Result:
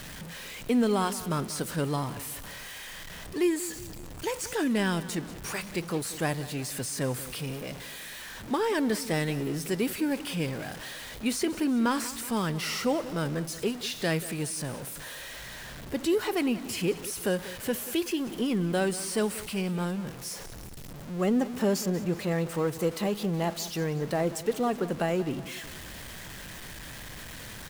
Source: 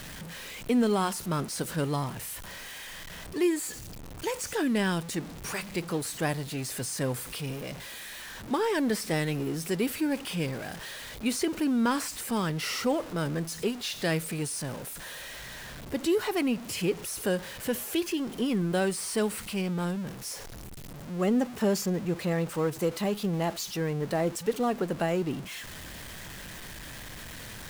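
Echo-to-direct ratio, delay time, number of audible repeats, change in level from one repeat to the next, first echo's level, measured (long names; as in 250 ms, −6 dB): −14.5 dB, 186 ms, 3, −5.5 dB, −16.0 dB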